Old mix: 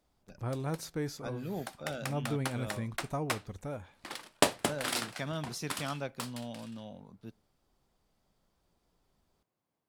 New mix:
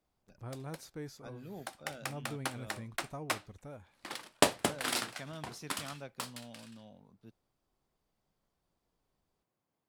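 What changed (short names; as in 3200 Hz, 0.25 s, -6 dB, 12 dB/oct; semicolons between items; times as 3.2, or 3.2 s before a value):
speech -7.5 dB; reverb: off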